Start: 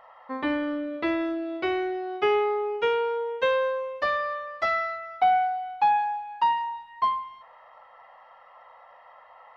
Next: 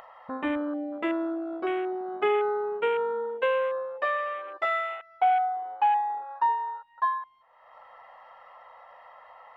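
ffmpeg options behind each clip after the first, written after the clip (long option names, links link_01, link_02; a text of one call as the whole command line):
ffmpeg -i in.wav -af "afwtdn=0.0251,acompressor=mode=upward:threshold=-32dB:ratio=2.5,volume=-1.5dB" out.wav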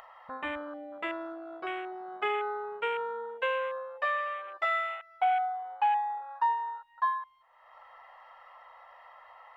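ffmpeg -i in.wav -af "equalizer=frequency=270:width=0.7:gain=-14" out.wav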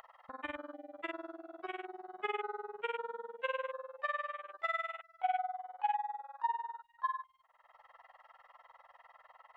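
ffmpeg -i in.wav -af "tremolo=f=20:d=0.947,volume=-3dB" out.wav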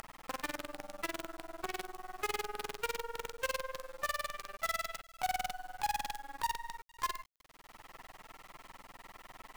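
ffmpeg -i in.wav -af "acompressor=threshold=-49dB:ratio=2.5,acrusher=bits=8:dc=4:mix=0:aa=0.000001,volume=10dB" out.wav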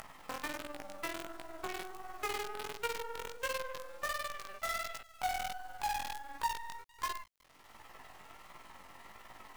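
ffmpeg -i in.wav -af "flanger=delay=17:depth=5.4:speed=1.4,volume=2.5dB" out.wav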